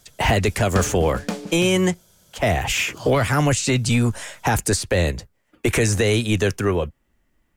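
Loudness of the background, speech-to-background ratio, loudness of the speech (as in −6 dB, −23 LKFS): −33.0 LKFS, 12.5 dB, −20.5 LKFS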